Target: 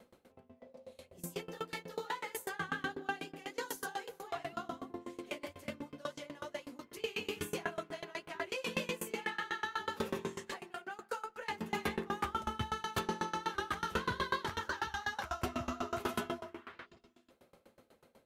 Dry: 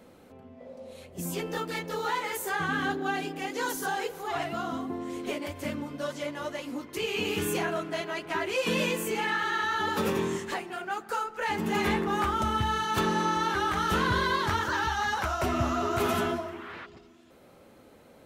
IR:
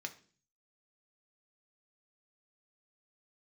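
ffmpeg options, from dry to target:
-filter_complex "[0:a]asplit=2[a][b];[1:a]atrim=start_sample=2205,asetrate=83790,aresample=44100[c];[b][c]afir=irnorm=-1:irlink=0,volume=2.5dB[d];[a][d]amix=inputs=2:normalize=0,aeval=exprs='val(0)*pow(10,-25*if(lt(mod(8.1*n/s,1),2*abs(8.1)/1000),1-mod(8.1*n/s,1)/(2*abs(8.1)/1000),(mod(8.1*n/s,1)-2*abs(8.1)/1000)/(1-2*abs(8.1)/1000))/20)':c=same,volume=-5.5dB"

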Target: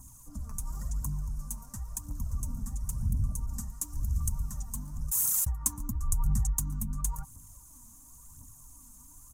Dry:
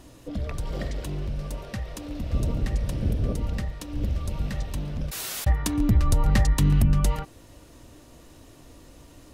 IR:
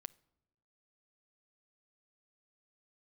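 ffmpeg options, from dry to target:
-filter_complex "[0:a]acompressor=threshold=-23dB:ratio=5,firequalizer=gain_entry='entry(150,0);entry(250,-4);entry(360,-25);entry(540,-22);entry(1000,2);entry(2100,-25);entry(3400,-28);entry(6500,12);entry(11000,14)':delay=0.05:min_phase=1,aphaser=in_gain=1:out_gain=1:delay=4.8:decay=0.59:speed=0.95:type=triangular,asettb=1/sr,asplit=3[a][b][c];[a]atrim=end=3.464[d];[b]atrim=start=3.46:end=4.29,asetpts=PTS-STARTPTS,afade=t=in:d=0.004:c=qsin,afade=t=out:st=0.826:d=0.004:c=qsin,adynamicequalizer=threshold=0.002:dfrequency=1800:dqfactor=0.7:tfrequency=1800:tqfactor=0.7:attack=5:release=100:ratio=0.375:range=2:mode=boostabove:tftype=highshelf[e];[c]atrim=start=4.286[f];[d][e]acrossfade=d=0.004:c1=hsin:c2=qsin[g];[g][f]acrossfade=d=0.004:c1=qsin:c2=hsin,volume=-7dB"

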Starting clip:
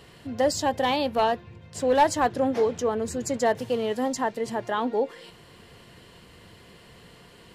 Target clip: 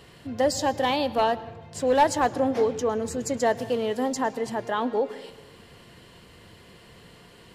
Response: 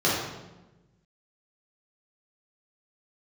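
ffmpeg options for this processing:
-filter_complex "[0:a]asplit=2[a][b];[1:a]atrim=start_sample=2205,highshelf=f=8.7k:g=9,adelay=106[c];[b][c]afir=irnorm=-1:irlink=0,volume=-33.5dB[d];[a][d]amix=inputs=2:normalize=0"

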